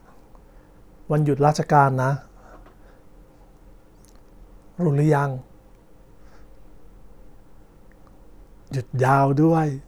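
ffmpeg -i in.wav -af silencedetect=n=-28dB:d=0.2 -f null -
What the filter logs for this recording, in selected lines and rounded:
silence_start: 0.00
silence_end: 1.10 | silence_duration: 1.10
silence_start: 2.17
silence_end: 4.79 | silence_duration: 2.63
silence_start: 5.38
silence_end: 8.72 | silence_duration: 3.34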